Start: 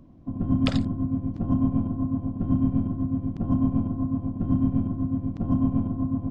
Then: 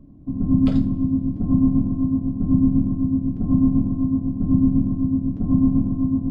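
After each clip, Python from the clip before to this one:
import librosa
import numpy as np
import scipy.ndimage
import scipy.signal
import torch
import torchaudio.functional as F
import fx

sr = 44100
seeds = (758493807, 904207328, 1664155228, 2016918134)

y = fx.tilt_shelf(x, sr, db=9.0, hz=680.0)
y = fx.rev_double_slope(y, sr, seeds[0], early_s=0.22, late_s=2.1, knee_db=-28, drr_db=0.5)
y = F.gain(torch.from_numpy(y), -5.0).numpy()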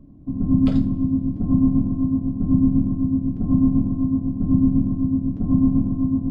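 y = x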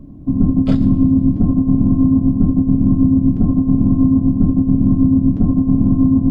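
y = fx.over_compress(x, sr, threshold_db=-19.0, ratio=-0.5)
y = F.gain(torch.from_numpy(y), 8.0).numpy()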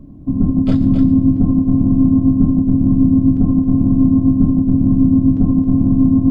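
y = x + 10.0 ** (-7.0 / 20.0) * np.pad(x, (int(269 * sr / 1000.0), 0))[:len(x)]
y = F.gain(torch.from_numpy(y), -1.0).numpy()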